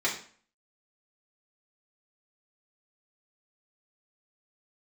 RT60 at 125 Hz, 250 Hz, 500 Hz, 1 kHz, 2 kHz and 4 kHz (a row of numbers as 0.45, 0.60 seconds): 0.45, 0.50, 0.45, 0.45, 0.45, 0.40 seconds